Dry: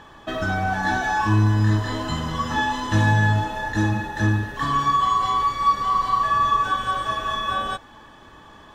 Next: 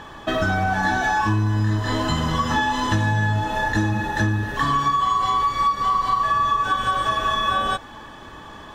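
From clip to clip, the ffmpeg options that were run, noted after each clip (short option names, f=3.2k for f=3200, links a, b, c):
-af "acompressor=threshold=-24dB:ratio=6,volume=6.5dB"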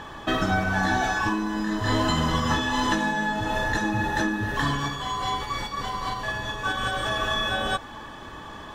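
-af "afftfilt=real='re*lt(hypot(re,im),0.631)':imag='im*lt(hypot(re,im),0.631)':win_size=1024:overlap=0.75"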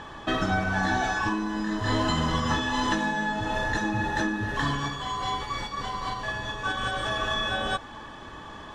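-af "lowpass=8.8k,volume=-2dB"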